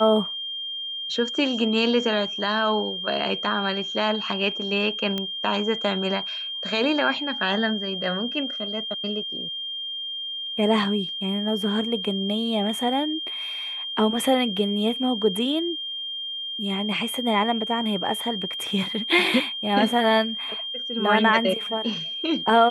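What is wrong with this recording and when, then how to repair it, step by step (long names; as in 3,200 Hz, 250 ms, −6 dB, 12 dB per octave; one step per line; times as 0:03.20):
whistle 3,200 Hz −29 dBFS
0:05.18: click −14 dBFS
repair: click removal
notch filter 3,200 Hz, Q 30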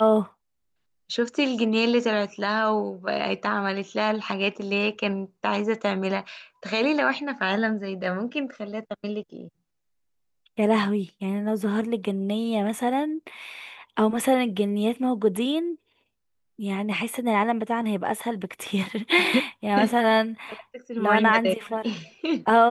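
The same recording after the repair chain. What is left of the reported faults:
none of them is left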